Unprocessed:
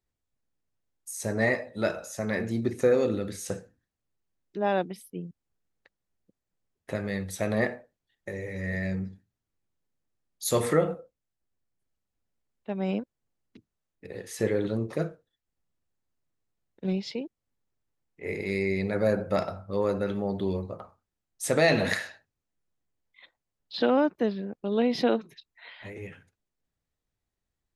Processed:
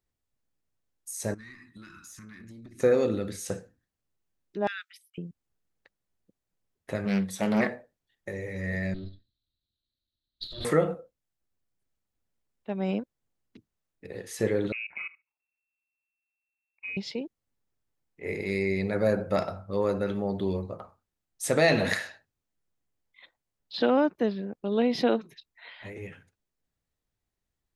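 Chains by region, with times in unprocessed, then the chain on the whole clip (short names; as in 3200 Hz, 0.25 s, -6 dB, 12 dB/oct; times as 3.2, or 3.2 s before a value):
1.34–2.8 Chebyshev band-stop 320–1100 Hz, order 3 + tube stage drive 21 dB, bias 0.65 + compressor 20:1, threshold -43 dBFS
4.67–5.18 gate -46 dBFS, range -16 dB + steep high-pass 1300 Hz 96 dB/oct + mismatched tape noise reduction encoder only
7.05–7.7 low shelf 200 Hz -10.5 dB + small resonant body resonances 200/1100/3500 Hz, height 14 dB, ringing for 90 ms + Doppler distortion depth 0.29 ms
8.94–10.65 minimum comb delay 3.2 ms + EQ curve 150 Hz 0 dB, 270 Hz -10 dB, 620 Hz -13 dB, 930 Hz -26 dB, 1300 Hz -14 dB, 2400 Hz -15 dB, 4000 Hz +15 dB, 6400 Hz -27 dB + negative-ratio compressor -38 dBFS
14.72–16.97 level quantiser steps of 18 dB + inverted band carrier 2700 Hz
whole clip: dry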